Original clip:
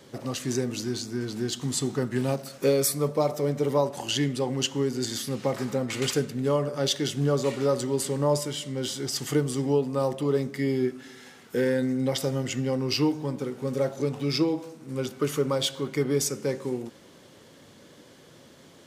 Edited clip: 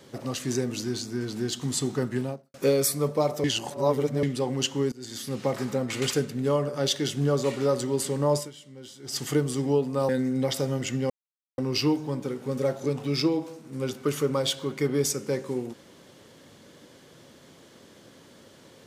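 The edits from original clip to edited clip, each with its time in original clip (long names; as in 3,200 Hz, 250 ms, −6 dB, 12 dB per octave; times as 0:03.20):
0:02.06–0:02.54: fade out and dull
0:03.44–0:04.23: reverse
0:04.92–0:05.39: fade in linear, from −22 dB
0:08.37–0:09.17: duck −14 dB, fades 0.14 s
0:10.09–0:11.73: remove
0:12.74: splice in silence 0.48 s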